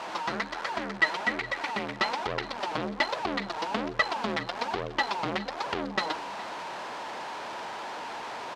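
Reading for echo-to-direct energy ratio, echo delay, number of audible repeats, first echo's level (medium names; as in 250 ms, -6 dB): -18.5 dB, 415 ms, 1, -18.5 dB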